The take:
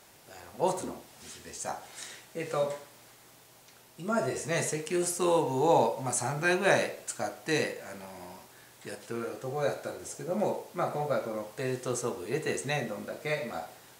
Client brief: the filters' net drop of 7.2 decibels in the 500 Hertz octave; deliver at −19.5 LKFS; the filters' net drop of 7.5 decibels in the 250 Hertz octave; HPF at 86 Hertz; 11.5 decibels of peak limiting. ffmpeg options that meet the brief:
ffmpeg -i in.wav -af "highpass=86,equalizer=frequency=250:width_type=o:gain=-8.5,equalizer=frequency=500:width_type=o:gain=-6.5,volume=18dB,alimiter=limit=-6.5dB:level=0:latency=1" out.wav

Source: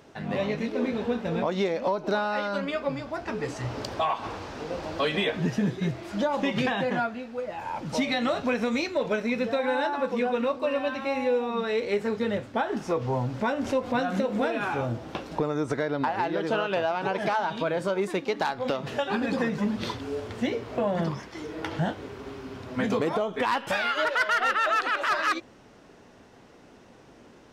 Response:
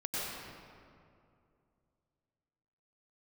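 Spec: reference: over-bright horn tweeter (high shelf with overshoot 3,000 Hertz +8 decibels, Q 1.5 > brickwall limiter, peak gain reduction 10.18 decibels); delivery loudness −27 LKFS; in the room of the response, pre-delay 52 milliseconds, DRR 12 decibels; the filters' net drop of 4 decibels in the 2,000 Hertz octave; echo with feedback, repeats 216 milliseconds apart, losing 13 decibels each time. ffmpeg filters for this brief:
-filter_complex "[0:a]equalizer=frequency=2000:width_type=o:gain=-3.5,aecho=1:1:216|432|648:0.224|0.0493|0.0108,asplit=2[link_01][link_02];[1:a]atrim=start_sample=2205,adelay=52[link_03];[link_02][link_03]afir=irnorm=-1:irlink=0,volume=-17dB[link_04];[link_01][link_04]amix=inputs=2:normalize=0,highshelf=frequency=3000:width_type=q:width=1.5:gain=8,volume=2dB,alimiter=limit=-17dB:level=0:latency=1"

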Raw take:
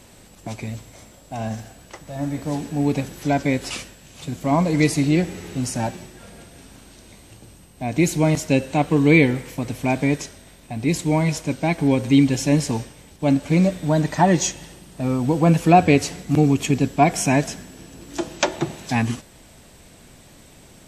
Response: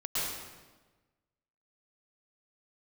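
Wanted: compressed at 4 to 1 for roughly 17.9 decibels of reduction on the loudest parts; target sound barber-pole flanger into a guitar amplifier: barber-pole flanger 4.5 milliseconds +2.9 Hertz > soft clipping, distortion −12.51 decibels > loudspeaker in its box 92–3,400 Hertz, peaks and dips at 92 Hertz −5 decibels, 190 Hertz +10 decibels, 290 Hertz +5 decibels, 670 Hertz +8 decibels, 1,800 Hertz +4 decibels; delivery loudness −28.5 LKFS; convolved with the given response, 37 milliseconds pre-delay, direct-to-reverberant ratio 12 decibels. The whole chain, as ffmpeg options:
-filter_complex "[0:a]acompressor=threshold=-32dB:ratio=4,asplit=2[link_01][link_02];[1:a]atrim=start_sample=2205,adelay=37[link_03];[link_02][link_03]afir=irnorm=-1:irlink=0,volume=-19dB[link_04];[link_01][link_04]amix=inputs=2:normalize=0,asplit=2[link_05][link_06];[link_06]adelay=4.5,afreqshift=2.9[link_07];[link_05][link_07]amix=inputs=2:normalize=1,asoftclip=threshold=-31dB,highpass=92,equalizer=frequency=92:width_type=q:width=4:gain=-5,equalizer=frequency=190:width_type=q:width=4:gain=10,equalizer=frequency=290:width_type=q:width=4:gain=5,equalizer=frequency=670:width_type=q:width=4:gain=8,equalizer=frequency=1800:width_type=q:width=4:gain=4,lowpass=frequency=3400:width=0.5412,lowpass=frequency=3400:width=1.3066,volume=7.5dB"

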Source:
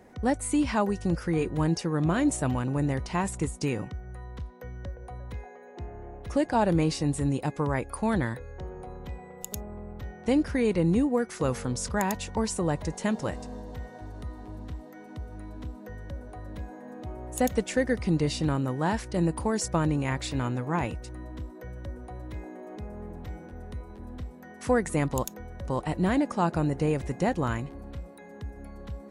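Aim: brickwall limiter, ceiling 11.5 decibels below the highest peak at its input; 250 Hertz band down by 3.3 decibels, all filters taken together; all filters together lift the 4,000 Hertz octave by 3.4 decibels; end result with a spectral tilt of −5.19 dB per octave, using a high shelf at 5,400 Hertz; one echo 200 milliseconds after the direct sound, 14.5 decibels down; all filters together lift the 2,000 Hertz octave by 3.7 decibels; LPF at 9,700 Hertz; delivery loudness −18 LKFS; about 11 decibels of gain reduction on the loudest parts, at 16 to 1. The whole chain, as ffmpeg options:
ffmpeg -i in.wav -af "lowpass=9700,equalizer=frequency=250:width_type=o:gain=-4.5,equalizer=frequency=2000:width_type=o:gain=4,equalizer=frequency=4000:width_type=o:gain=5,highshelf=frequency=5400:gain=-3.5,acompressor=threshold=-31dB:ratio=16,alimiter=level_in=6.5dB:limit=-24dB:level=0:latency=1,volume=-6.5dB,aecho=1:1:200:0.188,volume=22.5dB" out.wav

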